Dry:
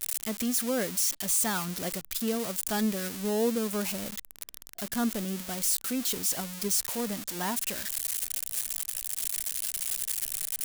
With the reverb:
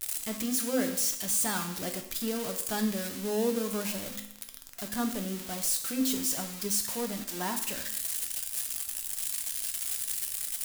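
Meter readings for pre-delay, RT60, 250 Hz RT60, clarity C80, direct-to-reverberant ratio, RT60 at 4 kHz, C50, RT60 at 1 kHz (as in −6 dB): 4 ms, 0.75 s, 0.75 s, 11.0 dB, 4.5 dB, 0.70 s, 8.5 dB, 0.75 s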